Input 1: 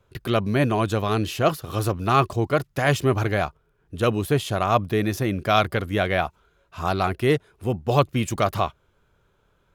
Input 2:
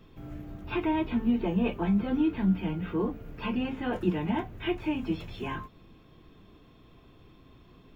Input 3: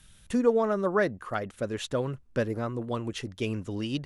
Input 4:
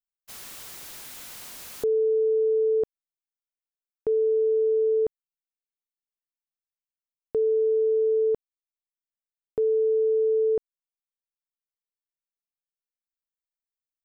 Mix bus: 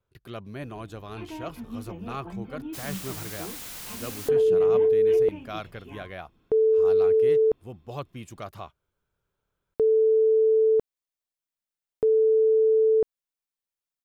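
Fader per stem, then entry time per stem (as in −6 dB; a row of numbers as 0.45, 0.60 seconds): −16.5 dB, −11.5 dB, muted, +2.5 dB; 0.00 s, 0.45 s, muted, 2.45 s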